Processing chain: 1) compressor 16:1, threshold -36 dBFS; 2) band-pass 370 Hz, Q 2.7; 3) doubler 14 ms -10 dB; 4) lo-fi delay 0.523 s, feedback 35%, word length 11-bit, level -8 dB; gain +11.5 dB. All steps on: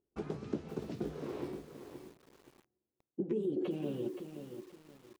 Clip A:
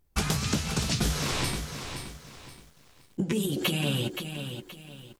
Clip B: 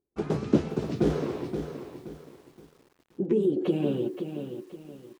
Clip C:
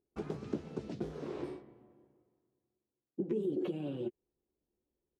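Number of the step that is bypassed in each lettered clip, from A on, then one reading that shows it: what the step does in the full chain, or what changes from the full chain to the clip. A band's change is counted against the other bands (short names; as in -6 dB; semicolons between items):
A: 2, 500 Hz band -13.5 dB; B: 1, mean gain reduction 9.5 dB; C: 4, momentary loudness spread change -7 LU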